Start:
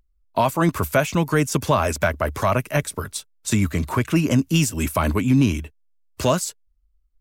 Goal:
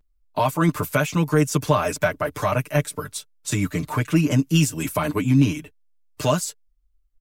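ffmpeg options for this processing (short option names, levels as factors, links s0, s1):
-af "aecho=1:1:6.7:0.91,volume=0.631"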